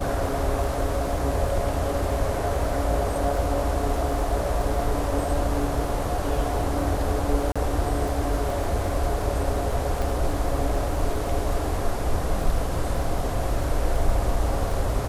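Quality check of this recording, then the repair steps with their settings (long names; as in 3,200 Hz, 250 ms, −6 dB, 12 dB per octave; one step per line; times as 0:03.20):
surface crackle 31 per second −31 dBFS
0:07.52–0:07.56: drop-out 36 ms
0:10.02: click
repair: click removal
repair the gap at 0:07.52, 36 ms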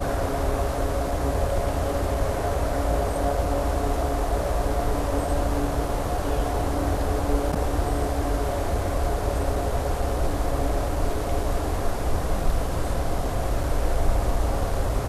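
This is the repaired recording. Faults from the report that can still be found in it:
none of them is left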